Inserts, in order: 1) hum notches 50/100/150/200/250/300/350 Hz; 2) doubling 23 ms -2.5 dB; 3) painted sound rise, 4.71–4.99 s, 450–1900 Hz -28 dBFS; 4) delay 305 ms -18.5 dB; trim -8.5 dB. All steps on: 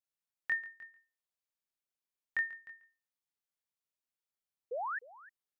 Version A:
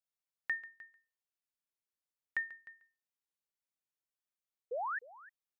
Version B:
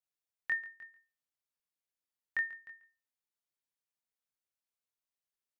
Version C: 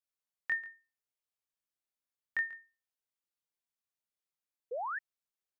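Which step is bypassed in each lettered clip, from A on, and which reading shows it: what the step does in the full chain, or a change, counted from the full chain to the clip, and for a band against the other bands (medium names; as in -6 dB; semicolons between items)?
2, loudness change -1.5 LU; 3, crest factor change +1.5 dB; 4, momentary loudness spread change -8 LU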